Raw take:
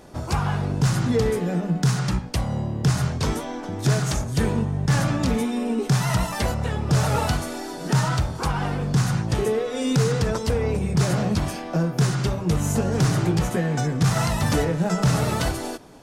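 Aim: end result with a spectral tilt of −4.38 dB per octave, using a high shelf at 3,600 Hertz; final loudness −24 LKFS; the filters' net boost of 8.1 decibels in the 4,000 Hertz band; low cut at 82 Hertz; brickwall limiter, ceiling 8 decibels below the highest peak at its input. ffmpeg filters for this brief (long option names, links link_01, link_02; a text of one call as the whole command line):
ffmpeg -i in.wav -af "highpass=82,highshelf=frequency=3600:gain=8,equalizer=frequency=4000:width_type=o:gain=4.5,alimiter=limit=-14dB:level=0:latency=1" out.wav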